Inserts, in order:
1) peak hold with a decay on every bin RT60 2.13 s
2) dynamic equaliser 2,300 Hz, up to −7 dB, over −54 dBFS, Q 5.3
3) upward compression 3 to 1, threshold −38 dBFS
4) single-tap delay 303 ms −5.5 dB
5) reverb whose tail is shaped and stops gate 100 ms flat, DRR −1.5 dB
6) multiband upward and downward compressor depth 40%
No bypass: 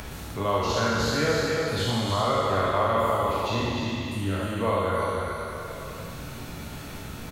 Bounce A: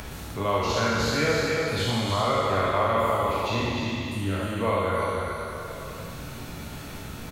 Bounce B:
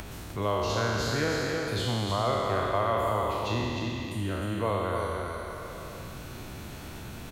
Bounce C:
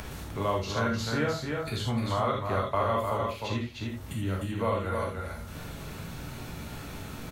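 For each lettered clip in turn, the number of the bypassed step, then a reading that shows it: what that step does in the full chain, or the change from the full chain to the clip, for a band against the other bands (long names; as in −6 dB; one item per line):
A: 2, 2 kHz band +1.5 dB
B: 5, change in integrated loudness −3.5 LU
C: 1, 125 Hz band +3.0 dB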